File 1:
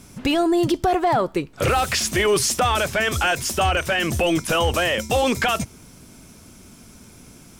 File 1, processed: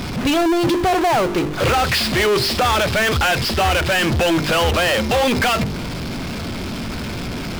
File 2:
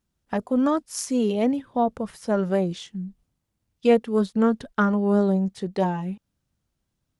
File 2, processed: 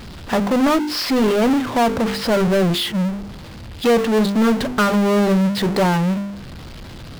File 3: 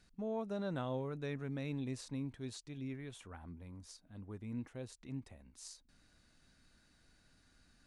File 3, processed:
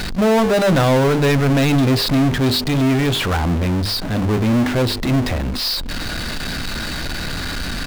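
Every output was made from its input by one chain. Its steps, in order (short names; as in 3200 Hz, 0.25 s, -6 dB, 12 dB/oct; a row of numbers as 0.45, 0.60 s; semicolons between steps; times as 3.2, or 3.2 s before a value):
notches 50/100/150/200/250/300/350/400/450 Hz; downsampling 11025 Hz; power-law curve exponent 0.35; match loudness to -18 LUFS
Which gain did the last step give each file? -1.5, -2.0, +19.0 dB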